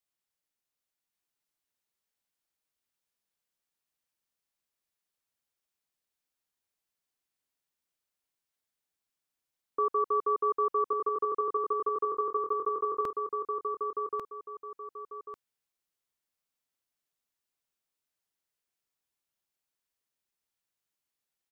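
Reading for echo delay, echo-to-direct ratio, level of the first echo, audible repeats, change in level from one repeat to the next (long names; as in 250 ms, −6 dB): 1,144 ms, −3.5 dB, −4.0 dB, 2, −11.0 dB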